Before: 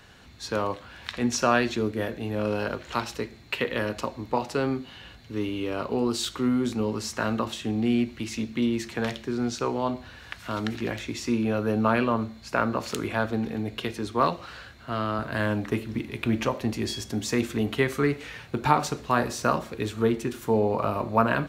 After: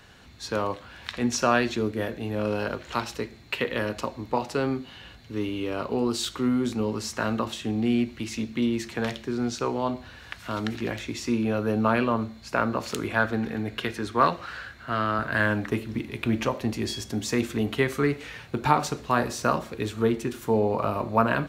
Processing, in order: 13.16–15.67 s: peaking EQ 1.6 kHz +7.5 dB 0.8 oct

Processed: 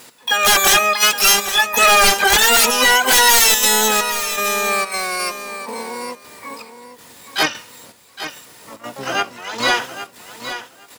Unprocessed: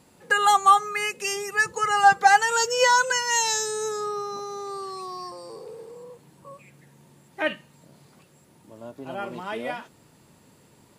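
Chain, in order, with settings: high-pass 1.1 kHz 6 dB/octave; treble shelf 2.2 kHz +3 dB; comb 4.1 ms, depth 41%; trance gate "x....xxxxx.xxx" 161 bpm -12 dB; sine folder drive 15 dB, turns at -7 dBFS; harmony voices -12 st -5 dB, +7 st -12 dB, +12 st -1 dB; on a send: feedback delay 816 ms, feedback 16%, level -11 dB; on the sum: trim -4.5 dB

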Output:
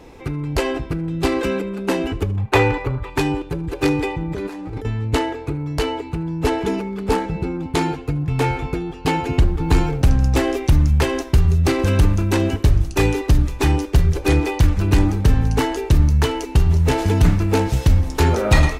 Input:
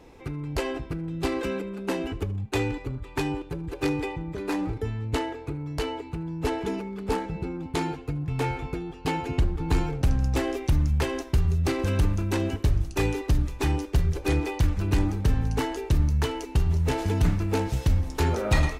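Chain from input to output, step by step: 2.37–3.10 s: graphic EQ 125/250/500/1000/2000/8000 Hz +3/-5/+5/+8/+5/-4 dB; 4.22–4.85 s: compressor with a negative ratio -36 dBFS, ratio -1; 9.28–10.13 s: word length cut 12-bit, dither none; trim +8 dB

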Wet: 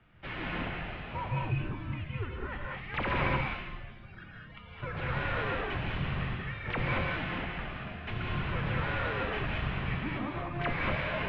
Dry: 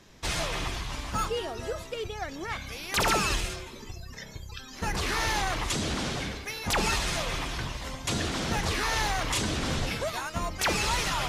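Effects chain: ten-band graphic EQ 125 Hz +4 dB, 250 Hz +4 dB, 1 kHz -4 dB; gated-style reverb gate 250 ms rising, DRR -2 dB; mistuned SSB -340 Hz 190–3100 Hz; trim -5 dB

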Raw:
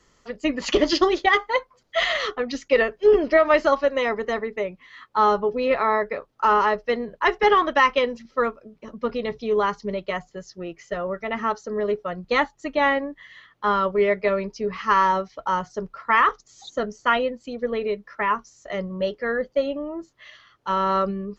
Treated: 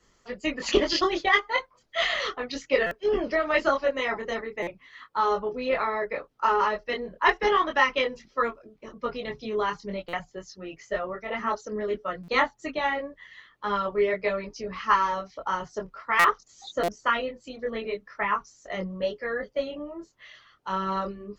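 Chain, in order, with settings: chorus voices 4, 0.33 Hz, delay 23 ms, depth 4.1 ms; harmonic-percussive split percussive +7 dB; buffer glitch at 2.86/4.62/10.08/12.23/16.19/16.83 s, samples 256, times 8; trim -4 dB

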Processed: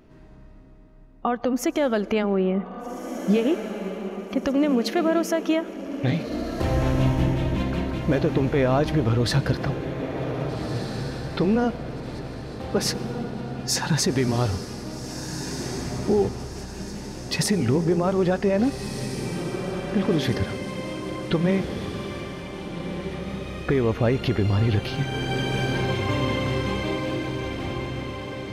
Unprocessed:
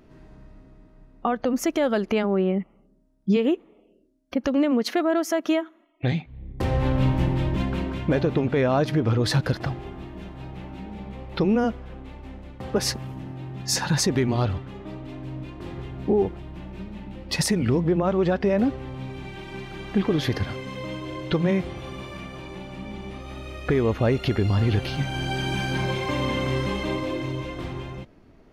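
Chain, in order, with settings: echo that smears into a reverb 1654 ms, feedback 48%, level -8 dB; on a send at -19 dB: reverberation RT60 4.2 s, pre-delay 88 ms

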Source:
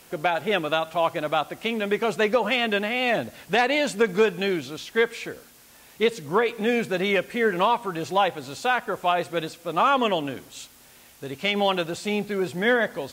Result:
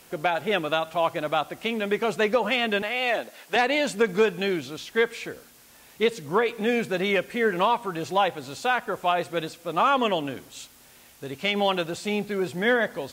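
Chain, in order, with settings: 2.82–3.56 s: high-pass 410 Hz 12 dB/octave; trim -1 dB

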